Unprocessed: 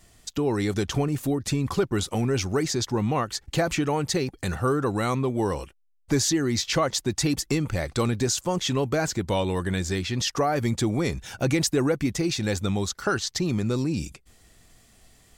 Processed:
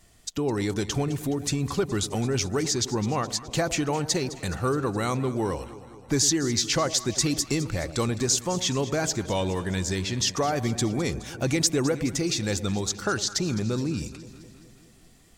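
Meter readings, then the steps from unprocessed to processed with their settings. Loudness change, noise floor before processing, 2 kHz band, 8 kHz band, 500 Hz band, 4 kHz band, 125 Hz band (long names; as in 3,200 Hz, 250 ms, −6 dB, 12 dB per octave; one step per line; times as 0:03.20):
−0.5 dB, −59 dBFS, −1.5 dB, +3.5 dB, −1.5 dB, +1.5 dB, −1.5 dB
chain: dynamic equaliser 6,500 Hz, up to +6 dB, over −42 dBFS, Q 0.93
delay that swaps between a low-pass and a high-pass 105 ms, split 850 Hz, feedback 78%, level −13.5 dB
level −2 dB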